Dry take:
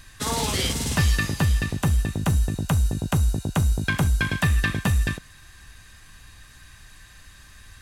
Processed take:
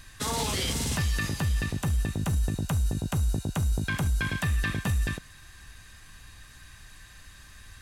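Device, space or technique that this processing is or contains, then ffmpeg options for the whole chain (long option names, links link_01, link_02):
clipper into limiter: -af "asoftclip=type=hard:threshold=-11.5dB,alimiter=limit=-18dB:level=0:latency=1:release=27,volume=-1.5dB"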